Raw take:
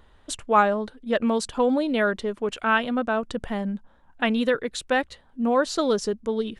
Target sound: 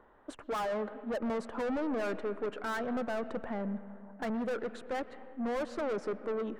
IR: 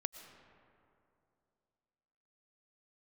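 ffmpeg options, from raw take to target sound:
-filter_complex "[0:a]acrossover=split=230 2100:gain=0.141 1 0.112[link_01][link_02][link_03];[link_01][link_02][link_03]amix=inputs=3:normalize=0,aeval=exprs='(tanh(44.7*val(0)+0.05)-tanh(0.05))/44.7':channel_layout=same,asplit=2[link_04][link_05];[1:a]atrim=start_sample=2205,lowpass=2100[link_06];[link_05][link_06]afir=irnorm=-1:irlink=0,volume=2dB[link_07];[link_04][link_07]amix=inputs=2:normalize=0,volume=-4.5dB"

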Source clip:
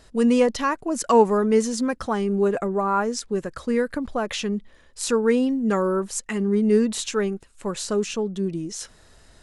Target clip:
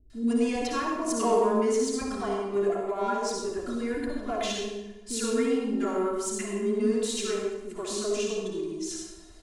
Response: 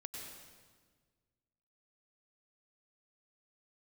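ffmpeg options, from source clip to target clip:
-filter_complex "[0:a]aecho=1:1:2.9:0.75,asplit=2[link_01][link_02];[link_02]asoftclip=type=tanh:threshold=-21.5dB,volume=-6dB[link_03];[link_01][link_03]amix=inputs=2:normalize=0,acrossover=split=340|1300[link_04][link_05][link_06];[link_06]adelay=100[link_07];[link_05]adelay=130[link_08];[link_04][link_08][link_07]amix=inputs=3:normalize=0[link_09];[1:a]atrim=start_sample=2205,asetrate=74970,aresample=44100[link_10];[link_09][link_10]afir=irnorm=-1:irlink=0"

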